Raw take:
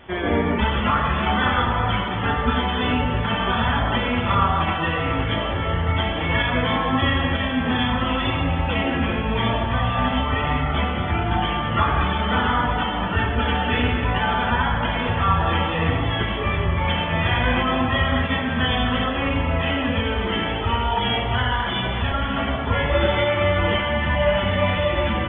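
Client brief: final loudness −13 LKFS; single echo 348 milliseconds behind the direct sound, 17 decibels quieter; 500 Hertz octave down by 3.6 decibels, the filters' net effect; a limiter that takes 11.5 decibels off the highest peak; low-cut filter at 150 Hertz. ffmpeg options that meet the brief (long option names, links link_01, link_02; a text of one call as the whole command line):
ffmpeg -i in.wav -af "highpass=150,equalizer=frequency=500:width_type=o:gain=-4.5,alimiter=limit=-19.5dB:level=0:latency=1,aecho=1:1:348:0.141,volume=14.5dB" out.wav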